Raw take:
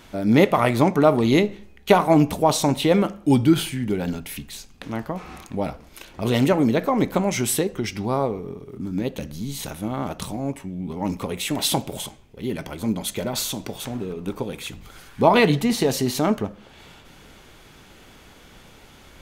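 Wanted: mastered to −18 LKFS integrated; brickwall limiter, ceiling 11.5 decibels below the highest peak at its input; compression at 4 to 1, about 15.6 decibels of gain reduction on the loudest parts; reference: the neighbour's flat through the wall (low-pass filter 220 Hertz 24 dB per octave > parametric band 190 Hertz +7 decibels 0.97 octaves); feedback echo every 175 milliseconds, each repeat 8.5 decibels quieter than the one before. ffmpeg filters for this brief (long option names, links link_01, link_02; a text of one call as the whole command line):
ffmpeg -i in.wav -af "acompressor=threshold=-30dB:ratio=4,alimiter=level_in=2dB:limit=-24dB:level=0:latency=1,volume=-2dB,lowpass=frequency=220:width=0.5412,lowpass=frequency=220:width=1.3066,equalizer=frequency=190:width_type=o:width=0.97:gain=7,aecho=1:1:175|350|525|700:0.376|0.143|0.0543|0.0206,volume=18dB" out.wav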